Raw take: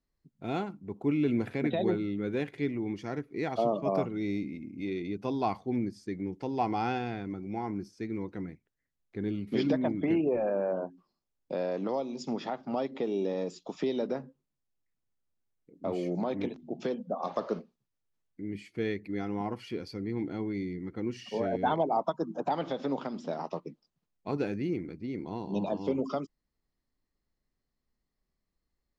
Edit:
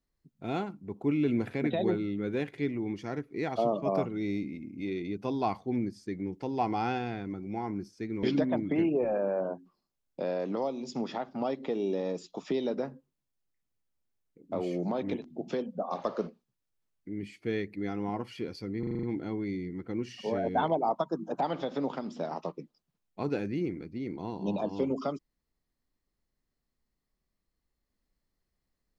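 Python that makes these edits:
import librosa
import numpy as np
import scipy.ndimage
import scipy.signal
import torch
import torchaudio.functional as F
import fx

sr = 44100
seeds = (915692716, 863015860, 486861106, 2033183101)

y = fx.edit(x, sr, fx.cut(start_s=8.23, length_s=1.32),
    fx.stutter(start_s=20.11, slice_s=0.04, count=7), tone=tone)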